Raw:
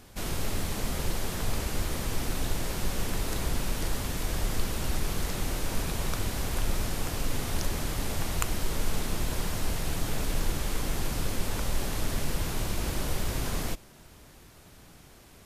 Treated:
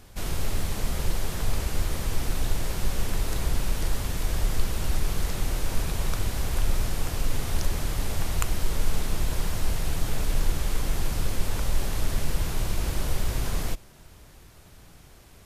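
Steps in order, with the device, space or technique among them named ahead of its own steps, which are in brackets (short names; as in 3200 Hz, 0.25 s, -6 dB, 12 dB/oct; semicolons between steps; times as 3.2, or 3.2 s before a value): low shelf boost with a cut just above (low shelf 100 Hz +6 dB; bell 250 Hz -3 dB 0.8 oct)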